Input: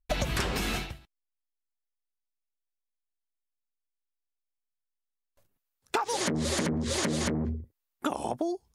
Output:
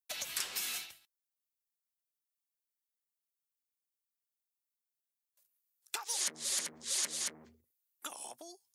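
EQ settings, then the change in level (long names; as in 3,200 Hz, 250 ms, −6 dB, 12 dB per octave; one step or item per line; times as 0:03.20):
first difference
+1.5 dB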